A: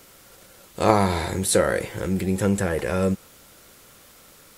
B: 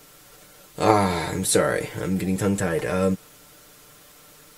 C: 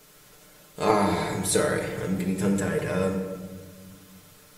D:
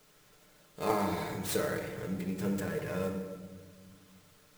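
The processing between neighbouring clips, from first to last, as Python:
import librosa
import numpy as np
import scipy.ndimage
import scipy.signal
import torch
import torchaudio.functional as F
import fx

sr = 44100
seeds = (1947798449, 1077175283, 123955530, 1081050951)

y1 = x + 0.65 * np.pad(x, (int(6.7 * sr / 1000.0), 0))[:len(x)]
y1 = y1 * 10.0 ** (-1.0 / 20.0)
y2 = fx.room_shoebox(y1, sr, seeds[0], volume_m3=1500.0, walls='mixed', distance_m=1.4)
y2 = y2 * 10.0 ** (-5.0 / 20.0)
y3 = fx.clock_jitter(y2, sr, seeds[1], jitter_ms=0.023)
y3 = y3 * 10.0 ** (-8.5 / 20.0)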